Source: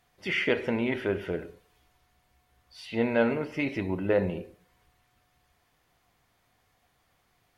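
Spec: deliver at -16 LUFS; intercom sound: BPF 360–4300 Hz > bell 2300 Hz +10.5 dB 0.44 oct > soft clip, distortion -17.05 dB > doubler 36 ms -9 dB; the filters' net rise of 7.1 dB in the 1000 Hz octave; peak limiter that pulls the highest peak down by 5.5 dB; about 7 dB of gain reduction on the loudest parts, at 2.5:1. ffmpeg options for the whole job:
-filter_complex "[0:a]equalizer=f=1k:t=o:g=9,acompressor=threshold=-28dB:ratio=2.5,alimiter=limit=-22.5dB:level=0:latency=1,highpass=360,lowpass=4.3k,equalizer=f=2.3k:t=o:w=0.44:g=10.5,asoftclip=threshold=-21.5dB,asplit=2[a][b];[b]adelay=36,volume=-9dB[c];[a][c]amix=inputs=2:normalize=0,volume=17dB"

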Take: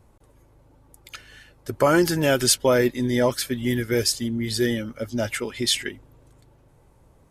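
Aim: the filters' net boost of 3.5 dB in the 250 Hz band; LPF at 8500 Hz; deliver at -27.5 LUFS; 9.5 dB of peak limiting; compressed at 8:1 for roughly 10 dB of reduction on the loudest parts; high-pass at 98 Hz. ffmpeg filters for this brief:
-af "highpass=98,lowpass=8.5k,equalizer=f=250:t=o:g=4.5,acompressor=threshold=-23dB:ratio=8,volume=2dB,alimiter=limit=-17dB:level=0:latency=1"

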